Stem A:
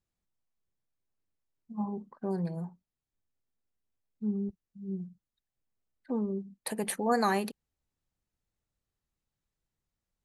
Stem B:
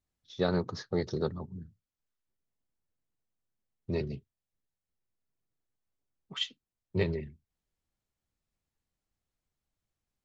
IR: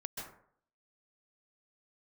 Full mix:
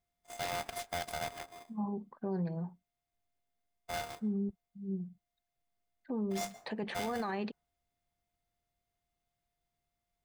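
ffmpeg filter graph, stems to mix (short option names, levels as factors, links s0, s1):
-filter_complex "[0:a]lowpass=f=4000:w=0.5412,lowpass=f=4000:w=1.3066,volume=0.891[s0];[1:a]highpass=f=730:p=1,aeval=exprs='abs(val(0))':c=same,aeval=exprs='val(0)*sgn(sin(2*PI*700*n/s))':c=same,volume=1.41,asplit=2[s1][s2];[s2]volume=0.1[s3];[2:a]atrim=start_sample=2205[s4];[s3][s4]afir=irnorm=-1:irlink=0[s5];[s0][s1][s5]amix=inputs=3:normalize=0,alimiter=level_in=1.58:limit=0.0631:level=0:latency=1:release=11,volume=0.631"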